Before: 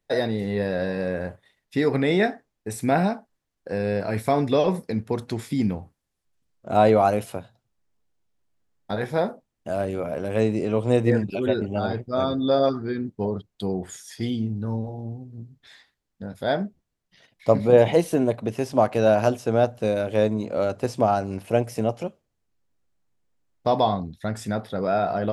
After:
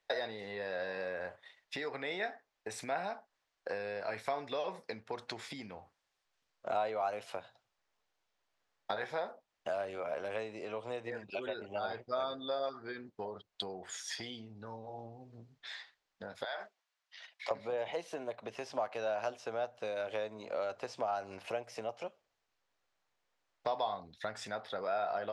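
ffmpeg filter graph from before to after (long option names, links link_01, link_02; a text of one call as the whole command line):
ffmpeg -i in.wav -filter_complex "[0:a]asettb=1/sr,asplit=3[link_01][link_02][link_03];[link_01]atrim=end=16.444[link_04];[link_02]atrim=start=16.44:end=17.51,asetpts=PTS-STARTPTS,afade=type=in:duration=0.004:curve=qsin,afade=type=out:start_time=1.066:duration=0.004:curve=qsin,highpass=890,acompressor=threshold=-35dB:ratio=6:attack=3.2:release=140:knee=1:detection=peak[link_05];[link_03]atrim=start=17.506[link_06];[link_04][link_05]acrossfade=duration=0.004:curve1=hsin:curve2=qsin[link_07];[link_07][link_06]acrossfade=duration=0.004:curve1=qsin:curve2=hsin,acompressor=threshold=-35dB:ratio=5,acrossover=split=530 6600:gain=0.1 1 0.0891[link_08][link_09][link_10];[link_08][link_09][link_10]amix=inputs=3:normalize=0,volume=5dB" out.wav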